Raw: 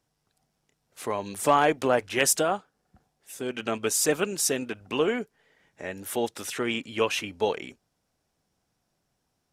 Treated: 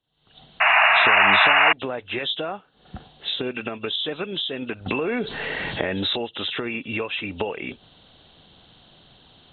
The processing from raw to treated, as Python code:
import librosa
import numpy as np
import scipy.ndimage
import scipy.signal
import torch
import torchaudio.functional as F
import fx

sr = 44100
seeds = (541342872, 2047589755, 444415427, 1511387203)

y = fx.freq_compress(x, sr, knee_hz=2600.0, ratio=4.0)
y = fx.recorder_agc(y, sr, target_db=-11.0, rise_db_per_s=77.0, max_gain_db=30)
y = fx.spec_paint(y, sr, seeds[0], shape='noise', start_s=0.6, length_s=1.13, low_hz=610.0, high_hz=2900.0, level_db=-8.0)
y = fx.env_flatten(y, sr, amount_pct=70, at=(4.86, 6.16))
y = F.gain(torch.from_numpy(y), -8.0).numpy()